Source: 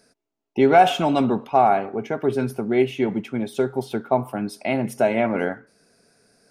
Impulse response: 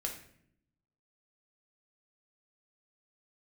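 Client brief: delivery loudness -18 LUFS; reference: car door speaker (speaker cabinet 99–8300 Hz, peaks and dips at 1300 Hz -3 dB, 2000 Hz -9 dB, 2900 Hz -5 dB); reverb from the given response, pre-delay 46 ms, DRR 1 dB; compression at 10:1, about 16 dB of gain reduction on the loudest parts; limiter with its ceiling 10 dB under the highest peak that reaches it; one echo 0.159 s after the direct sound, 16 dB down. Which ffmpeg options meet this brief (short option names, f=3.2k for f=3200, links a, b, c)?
-filter_complex "[0:a]acompressor=threshold=-25dB:ratio=10,alimiter=limit=-23.5dB:level=0:latency=1,aecho=1:1:159:0.158,asplit=2[a][b];[1:a]atrim=start_sample=2205,adelay=46[c];[b][c]afir=irnorm=-1:irlink=0,volume=-2dB[d];[a][d]amix=inputs=2:normalize=0,highpass=99,equalizer=f=1.3k:t=q:w=4:g=-3,equalizer=f=2k:t=q:w=4:g=-9,equalizer=f=2.9k:t=q:w=4:g=-5,lowpass=f=8.3k:w=0.5412,lowpass=f=8.3k:w=1.3066,volume=14dB"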